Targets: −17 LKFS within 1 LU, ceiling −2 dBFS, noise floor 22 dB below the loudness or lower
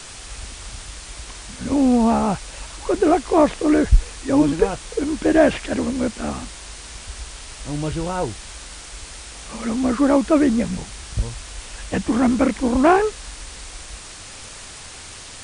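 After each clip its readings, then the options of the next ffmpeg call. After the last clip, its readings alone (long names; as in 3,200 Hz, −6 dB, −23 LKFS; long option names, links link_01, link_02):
background noise floor −38 dBFS; target noise floor −42 dBFS; integrated loudness −20.0 LKFS; sample peak −1.5 dBFS; target loudness −17.0 LKFS
→ -af "afftdn=noise_reduction=6:noise_floor=-38"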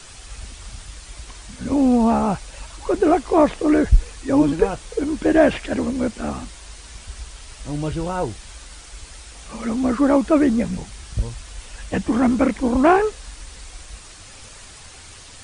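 background noise floor −42 dBFS; integrated loudness −20.0 LKFS; sample peak −1.5 dBFS; target loudness −17.0 LKFS
→ -af "volume=3dB,alimiter=limit=-2dB:level=0:latency=1"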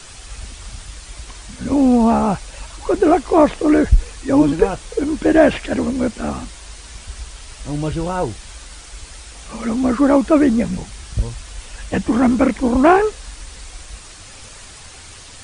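integrated loudness −17.0 LKFS; sample peak −2.0 dBFS; background noise floor −39 dBFS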